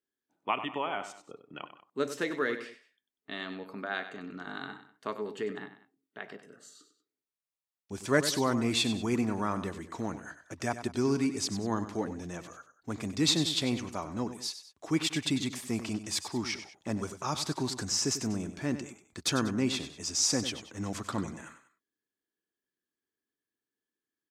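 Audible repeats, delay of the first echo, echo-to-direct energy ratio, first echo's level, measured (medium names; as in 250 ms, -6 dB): 2, 96 ms, -11.0 dB, -11.5 dB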